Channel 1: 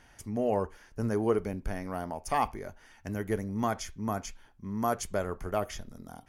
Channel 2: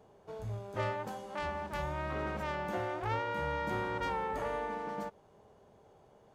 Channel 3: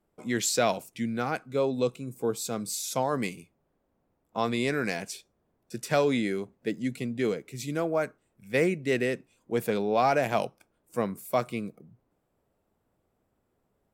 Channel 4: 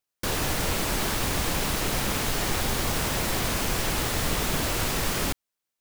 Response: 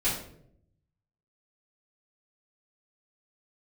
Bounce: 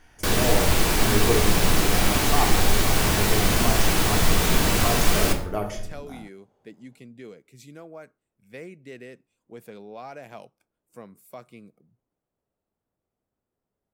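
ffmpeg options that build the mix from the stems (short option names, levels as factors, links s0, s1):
-filter_complex "[0:a]volume=0.75,asplit=2[s0][s1];[s1]volume=0.376[s2];[1:a]adelay=650,volume=0.398[s3];[2:a]acompressor=threshold=0.0178:ratio=1.5,volume=0.299[s4];[3:a]volume=1.19,asplit=2[s5][s6];[s6]volume=0.266[s7];[4:a]atrim=start_sample=2205[s8];[s2][s7]amix=inputs=2:normalize=0[s9];[s9][s8]afir=irnorm=-1:irlink=0[s10];[s0][s3][s4][s5][s10]amix=inputs=5:normalize=0"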